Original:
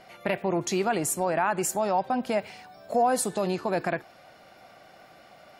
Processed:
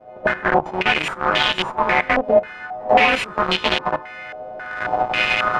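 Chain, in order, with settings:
every partial snapped to a pitch grid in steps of 3 semitones
camcorder AGC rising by 23 dB per second
in parallel at −2.5 dB: brickwall limiter −14 dBFS, peak gain reduction 8 dB
on the sum: log-companded quantiser 2 bits
on a send: backwards echo 94 ms −19.5 dB
on the sum: low-pass on a step sequencer 3.7 Hz 640–3,200 Hz
level −10.5 dB

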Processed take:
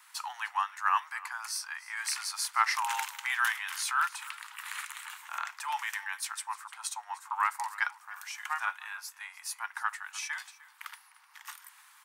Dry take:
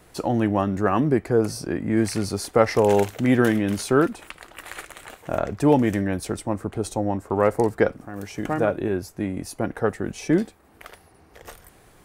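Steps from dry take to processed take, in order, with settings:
Butterworth high-pass 900 Hz 72 dB per octave
0:03.64–0:05.90: transient designer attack −4 dB, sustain +4 dB
single-tap delay 303 ms −19.5 dB

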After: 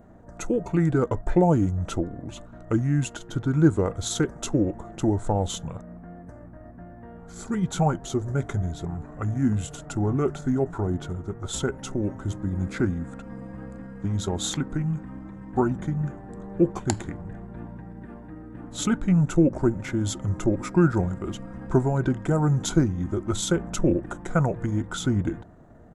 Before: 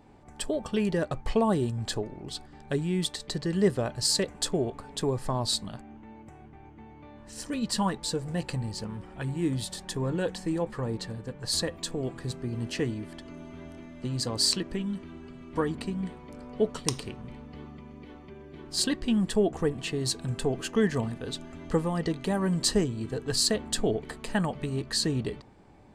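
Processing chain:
pitch shifter −4 semitones
flat-topped bell 3,700 Hz −13.5 dB
level +5.5 dB

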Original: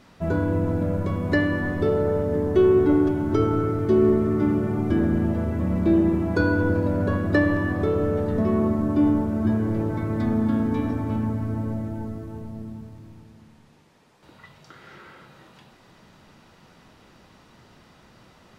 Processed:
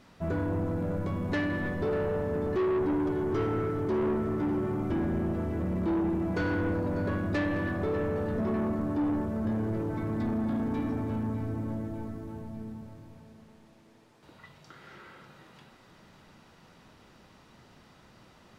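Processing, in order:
echo with a time of its own for lows and highs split 300 Hz, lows 320 ms, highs 597 ms, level −14 dB
soft clipping −20.5 dBFS, distortion −11 dB
level −4 dB

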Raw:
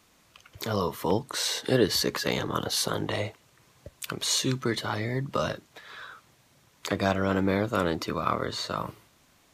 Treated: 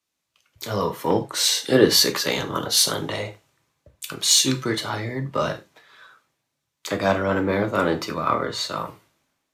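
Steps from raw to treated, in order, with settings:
reverb whose tail is shaped and stops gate 120 ms falling, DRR 5.5 dB
in parallel at −9 dB: soft clipping −24 dBFS, distortion −9 dB
on the sum: low-shelf EQ 94 Hz −9 dB
multiband upward and downward expander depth 70%
level +2 dB

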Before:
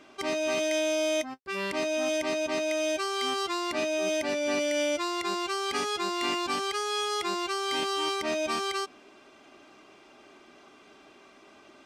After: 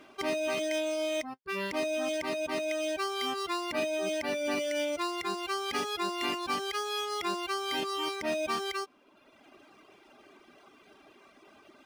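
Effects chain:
reverb reduction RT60 1.1 s
linearly interpolated sample-rate reduction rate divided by 3×

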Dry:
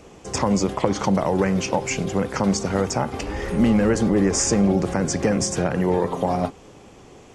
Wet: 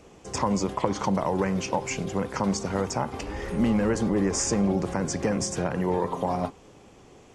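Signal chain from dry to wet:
dynamic equaliser 990 Hz, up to +6 dB, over −41 dBFS, Q 4.8
level −5.5 dB

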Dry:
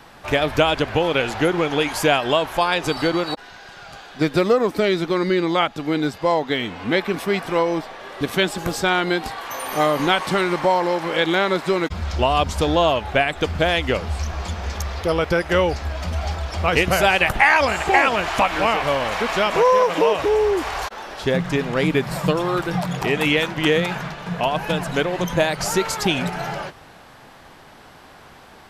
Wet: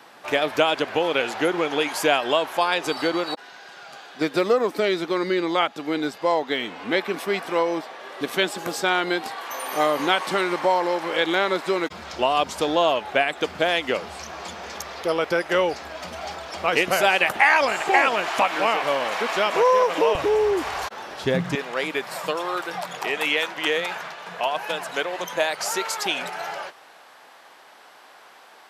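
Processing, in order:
high-pass filter 280 Hz 12 dB per octave, from 0:20.15 93 Hz, from 0:21.55 530 Hz
level −2 dB

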